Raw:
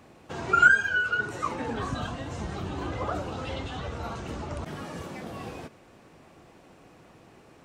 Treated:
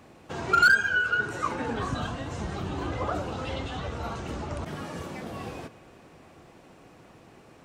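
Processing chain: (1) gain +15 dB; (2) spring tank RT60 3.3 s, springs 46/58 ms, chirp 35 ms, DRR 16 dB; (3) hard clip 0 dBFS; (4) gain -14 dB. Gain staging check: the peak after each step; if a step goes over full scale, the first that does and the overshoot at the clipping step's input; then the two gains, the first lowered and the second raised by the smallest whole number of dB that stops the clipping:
+8.0, +8.0, 0.0, -14.0 dBFS; step 1, 8.0 dB; step 1 +7 dB, step 4 -6 dB

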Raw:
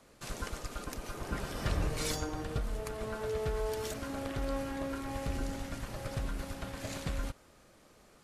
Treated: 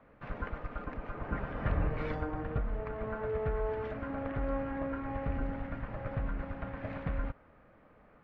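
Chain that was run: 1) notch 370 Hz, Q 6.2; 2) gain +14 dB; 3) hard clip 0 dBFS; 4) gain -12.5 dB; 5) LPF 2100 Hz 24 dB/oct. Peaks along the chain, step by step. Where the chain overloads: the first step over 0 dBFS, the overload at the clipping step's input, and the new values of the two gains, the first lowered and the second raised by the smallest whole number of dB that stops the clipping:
-20.0, -6.0, -6.0, -18.5, -19.5 dBFS; no overload

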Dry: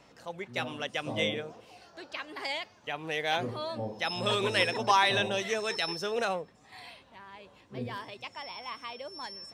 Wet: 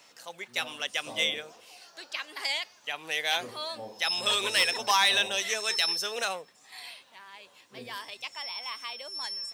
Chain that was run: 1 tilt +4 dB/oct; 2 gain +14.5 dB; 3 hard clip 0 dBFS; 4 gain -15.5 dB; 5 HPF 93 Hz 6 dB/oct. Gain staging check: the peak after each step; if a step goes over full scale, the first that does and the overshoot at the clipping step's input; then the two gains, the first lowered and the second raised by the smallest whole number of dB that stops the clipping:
-6.0, +8.5, 0.0, -15.5, -15.0 dBFS; step 2, 8.5 dB; step 2 +5.5 dB, step 4 -6.5 dB

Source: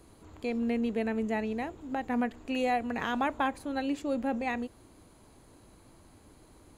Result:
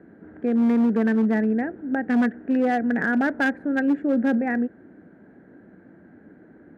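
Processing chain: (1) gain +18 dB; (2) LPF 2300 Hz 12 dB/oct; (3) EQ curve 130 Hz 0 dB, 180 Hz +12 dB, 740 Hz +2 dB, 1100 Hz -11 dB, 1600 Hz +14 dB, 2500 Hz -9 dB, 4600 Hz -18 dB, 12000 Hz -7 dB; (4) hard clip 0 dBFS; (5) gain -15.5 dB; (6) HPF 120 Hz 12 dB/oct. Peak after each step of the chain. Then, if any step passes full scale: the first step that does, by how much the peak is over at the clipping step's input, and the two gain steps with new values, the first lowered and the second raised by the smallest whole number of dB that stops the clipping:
-0.5, -0.5, +6.0, 0.0, -15.5, -12.0 dBFS; step 3, 6.0 dB; step 1 +12 dB, step 5 -9.5 dB

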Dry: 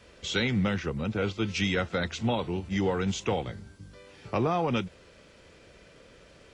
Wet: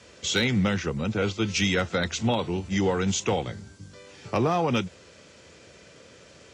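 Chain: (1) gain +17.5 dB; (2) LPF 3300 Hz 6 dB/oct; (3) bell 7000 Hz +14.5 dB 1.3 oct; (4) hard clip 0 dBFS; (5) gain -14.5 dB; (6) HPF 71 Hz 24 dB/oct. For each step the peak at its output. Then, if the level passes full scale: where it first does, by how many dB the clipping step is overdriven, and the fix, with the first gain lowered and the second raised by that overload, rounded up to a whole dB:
+3.0, +2.0, +3.5, 0.0, -14.5, -11.5 dBFS; step 1, 3.5 dB; step 1 +13.5 dB, step 5 -10.5 dB

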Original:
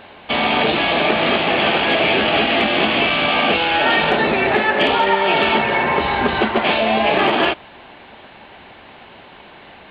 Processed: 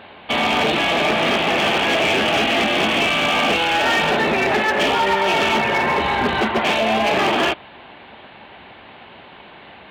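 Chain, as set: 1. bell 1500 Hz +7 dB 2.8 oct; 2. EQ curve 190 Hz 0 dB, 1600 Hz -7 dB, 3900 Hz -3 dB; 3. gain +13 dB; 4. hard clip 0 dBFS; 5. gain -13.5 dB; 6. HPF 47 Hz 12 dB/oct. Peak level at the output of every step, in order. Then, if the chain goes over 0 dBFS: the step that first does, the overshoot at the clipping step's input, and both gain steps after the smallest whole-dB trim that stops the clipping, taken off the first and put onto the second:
+1.0, -5.0, +8.0, 0.0, -13.5, -11.0 dBFS; step 1, 8.0 dB; step 3 +5 dB, step 5 -5.5 dB

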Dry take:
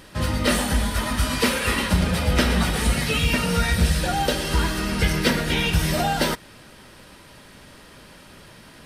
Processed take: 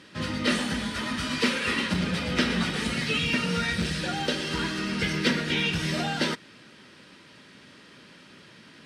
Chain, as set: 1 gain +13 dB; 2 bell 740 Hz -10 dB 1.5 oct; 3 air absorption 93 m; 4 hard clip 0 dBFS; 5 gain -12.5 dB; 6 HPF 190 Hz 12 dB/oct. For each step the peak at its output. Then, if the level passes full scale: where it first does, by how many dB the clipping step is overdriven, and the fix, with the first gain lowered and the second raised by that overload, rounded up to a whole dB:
+5.0, +4.0, +3.5, 0.0, -12.5, -10.5 dBFS; step 1, 3.5 dB; step 1 +9 dB, step 5 -8.5 dB

